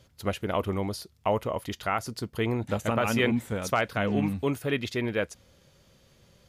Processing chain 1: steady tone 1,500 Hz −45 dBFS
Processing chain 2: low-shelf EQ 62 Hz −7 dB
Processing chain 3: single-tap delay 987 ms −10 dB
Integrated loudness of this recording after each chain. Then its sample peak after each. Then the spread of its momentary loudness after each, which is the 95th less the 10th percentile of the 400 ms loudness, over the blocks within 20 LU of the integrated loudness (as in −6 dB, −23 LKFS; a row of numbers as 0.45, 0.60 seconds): −29.0, −29.5, −29.0 LKFS; −12.5, −12.0, −11.5 dBFS; 20, 6, 13 LU